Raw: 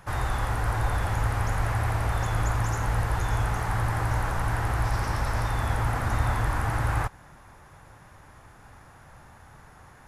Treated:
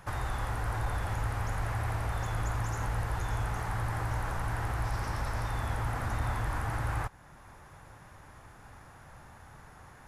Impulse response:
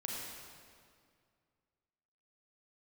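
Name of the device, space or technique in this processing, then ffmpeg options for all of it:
clipper into limiter: -af "asoftclip=type=hard:threshold=-17.5dB,alimiter=limit=-22.5dB:level=0:latency=1:release=426,volume=-1.5dB"

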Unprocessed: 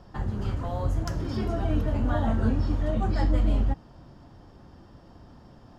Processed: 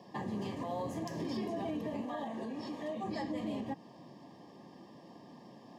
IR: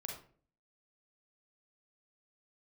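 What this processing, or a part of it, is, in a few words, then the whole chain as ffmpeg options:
PA system with an anti-feedback notch: -filter_complex "[0:a]highpass=frequency=170:width=0.5412,highpass=frequency=170:width=1.3066,asuperstop=centerf=1400:order=20:qfactor=3.7,alimiter=level_in=5dB:limit=-24dB:level=0:latency=1:release=131,volume=-5dB,asettb=1/sr,asplit=3[link_01][link_02][link_03];[link_01]atrim=end=2.014[link_04];[link_02]atrim=start=2.01:end=3.04,asetpts=PTS-STARTPTS,afade=type=in:duration=0.004:curve=qsin,afade=type=out:start_time=1.026:duration=0.004:curve=qsin,highpass=frequency=350:poles=1[link_05];[link_03]atrim=start=3.036[link_06];[link_04][link_05]acrossfade=duration=0.004:curve1=hsin:curve2=qsin[link_07];[link_07][link_06]acrossfade=duration=0.004:curve1=qsin:curve2=hsin"

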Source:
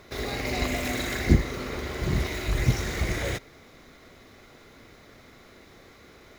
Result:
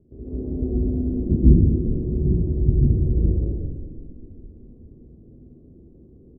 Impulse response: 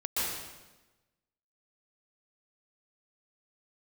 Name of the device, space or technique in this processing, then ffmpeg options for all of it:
next room: -filter_complex "[0:a]lowpass=frequency=340:width=0.5412,lowpass=frequency=340:width=1.3066[link_01];[1:a]atrim=start_sample=2205[link_02];[link_01][link_02]afir=irnorm=-1:irlink=0,asplit=2[link_03][link_04];[link_04]adelay=13,volume=-13dB[link_05];[link_03][link_05]amix=inputs=2:normalize=0,asplit=6[link_06][link_07][link_08][link_09][link_10][link_11];[link_07]adelay=401,afreqshift=-32,volume=-13dB[link_12];[link_08]adelay=802,afreqshift=-64,volume=-19dB[link_13];[link_09]adelay=1203,afreqshift=-96,volume=-25dB[link_14];[link_10]adelay=1604,afreqshift=-128,volume=-31.1dB[link_15];[link_11]adelay=2005,afreqshift=-160,volume=-37.1dB[link_16];[link_06][link_12][link_13][link_14][link_15][link_16]amix=inputs=6:normalize=0"

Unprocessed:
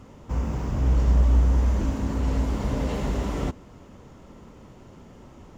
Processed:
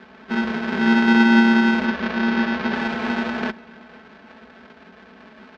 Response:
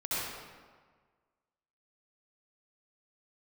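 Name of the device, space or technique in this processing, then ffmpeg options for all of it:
ring modulator pedal into a guitar cabinet: -filter_complex "[0:a]aeval=exprs='val(0)*sgn(sin(2*PI*290*n/s))':channel_layout=same,highpass=100,equalizer=frequency=130:width_type=q:width=4:gain=-8,equalizer=frequency=220:width_type=q:width=4:gain=4,equalizer=frequency=450:width_type=q:width=4:gain=-4,equalizer=frequency=1600:width_type=q:width=4:gain=9,equalizer=frequency=2400:width_type=q:width=4:gain=3,lowpass=frequency=4400:width=0.5412,lowpass=frequency=4400:width=1.3066,equalizer=frequency=130:width=2.2:gain=-4.5,aecho=1:1:4.6:0.76,asplit=2[link_01][link_02];[link_02]adelay=501.5,volume=-23dB,highshelf=frequency=4000:gain=-11.3[link_03];[link_01][link_03]amix=inputs=2:normalize=0,asettb=1/sr,asplit=3[link_04][link_05][link_06];[link_04]atrim=end=1.854[link_07];[link_05]atrim=start=1.85:end=2.75,asetpts=PTS-STARTPTS,afade=type=in:duration=0.004:curve=qsin,afade=type=out:start_time=0.896:duration=0.004:curve=qsin,lowpass=frequency=6300:width=0.5412,lowpass=frequency=6300:width=1.3066[link_08];[link_06]atrim=start=2.746[link_09];[link_07][link_08]acrossfade=duration=0.004:curve1=hsin:curve2=qsin[link_10];[link_10][link_09]acrossfade=duration=0.004:curve1=qsin:curve2=hsin,volume=-1dB"

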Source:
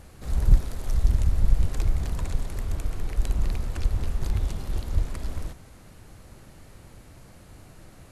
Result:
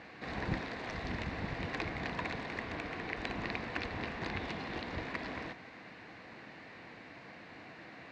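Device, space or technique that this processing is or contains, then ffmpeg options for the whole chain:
phone earpiece: -af "highpass=390,equalizer=frequency=390:width_type=q:width=4:gain=-8,equalizer=frequency=570:width_type=q:width=4:gain=-9,equalizer=frequency=860:width_type=q:width=4:gain=-5,equalizer=frequency=1300:width_type=q:width=4:gain=-9,equalizer=frequency=1900:width_type=q:width=4:gain=3,equalizer=frequency=3200:width_type=q:width=4:gain=-8,lowpass=frequency=3500:width=0.5412,lowpass=frequency=3500:width=1.3066,volume=9.5dB"

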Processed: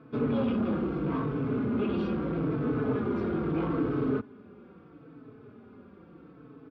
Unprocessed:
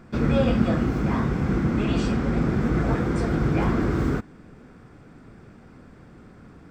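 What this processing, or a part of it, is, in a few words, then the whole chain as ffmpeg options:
barber-pole flanger into a guitar amplifier: -filter_complex "[0:a]asplit=2[link_01][link_02];[link_02]adelay=4.1,afreqshift=-0.77[link_03];[link_01][link_03]amix=inputs=2:normalize=1,asoftclip=type=tanh:threshold=-23dB,highpass=110,equalizer=frequency=280:width_type=q:width=4:gain=6,equalizer=frequency=430:width_type=q:width=4:gain=8,equalizer=frequency=740:width_type=q:width=4:gain=-3,equalizer=frequency=1200:width_type=q:width=4:gain=4,equalizer=frequency=1900:width_type=q:width=4:gain=-9,lowpass=frequency=3500:width=0.5412,lowpass=frequency=3500:width=1.3066,volume=-2dB"

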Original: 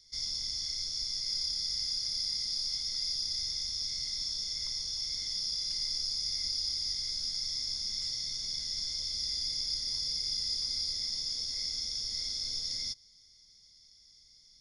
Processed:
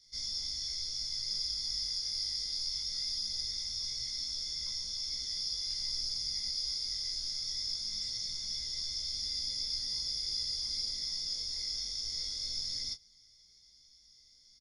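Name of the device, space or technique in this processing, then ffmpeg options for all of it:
double-tracked vocal: -filter_complex "[0:a]asplit=2[link_01][link_02];[link_02]adelay=19,volume=-5dB[link_03];[link_01][link_03]amix=inputs=2:normalize=0,flanger=delay=15:depth=6.5:speed=0.21"

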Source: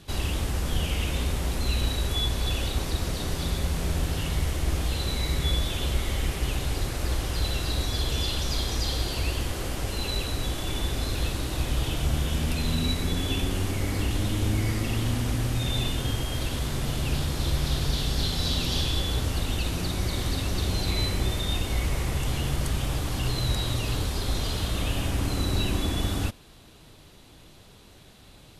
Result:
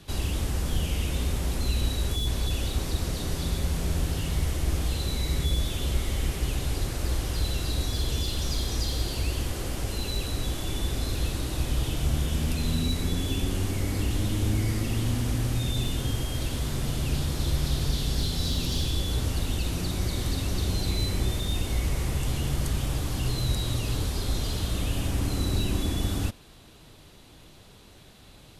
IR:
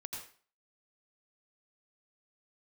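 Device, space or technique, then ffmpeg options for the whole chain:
one-band saturation: -filter_complex "[0:a]acrossover=split=460|4400[link_01][link_02][link_03];[link_02]asoftclip=type=tanh:threshold=-38dB[link_04];[link_01][link_04][link_03]amix=inputs=3:normalize=0"

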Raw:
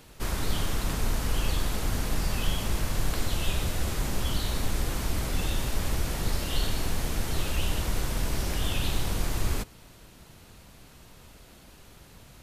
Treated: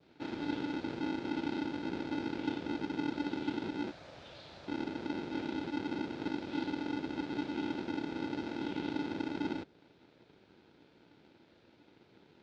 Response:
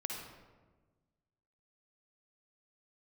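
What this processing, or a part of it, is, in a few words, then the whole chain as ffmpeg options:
ring modulator pedal into a guitar cabinet: -filter_complex "[0:a]asettb=1/sr,asplit=3[link_01][link_02][link_03];[link_01]atrim=end=3.914[link_04];[link_02]atrim=start=3.91:end=4.68,asetpts=PTS-STARTPTS,afade=type=in:duration=0.004:curve=qsin,afade=type=out:start_time=0.766:duration=0.004:curve=qsin,highpass=frequency=280:width=0.5412,highpass=frequency=280:width=1.3066[link_05];[link_03]atrim=start=4.676[link_06];[link_04][link_05]acrossfade=duration=0.004:curve1=hsin:curve2=qsin[link_07];[link_07][link_06]acrossfade=duration=0.004:curve1=qsin:curve2=hsin,adynamicequalizer=threshold=0.00282:dfrequency=2200:dqfactor=0.71:tfrequency=2200:tqfactor=0.71:attack=5:release=100:ratio=0.375:range=3:mode=cutabove:tftype=bell,aeval=exprs='val(0)*sgn(sin(2*PI*290*n/s))':channel_layout=same,highpass=88,equalizer=frequency=240:width_type=q:width=4:gain=-4,equalizer=frequency=750:width_type=q:width=4:gain=-4,equalizer=frequency=1100:width_type=q:width=4:gain=-10,equalizer=frequency=1900:width_type=q:width=4:gain=-6,equalizer=frequency=2900:width_type=q:width=4:gain=-5,lowpass=frequency=3900:width=0.5412,lowpass=frequency=3900:width=1.3066,volume=-9dB"

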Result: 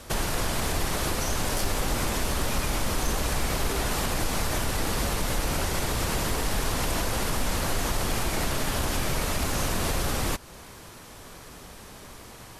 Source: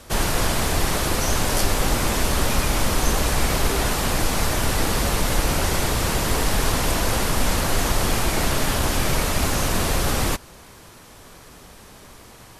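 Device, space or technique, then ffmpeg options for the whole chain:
clipper into limiter: -af "asoftclip=type=hard:threshold=-10dB,alimiter=limit=-17dB:level=0:latency=1:release=232"

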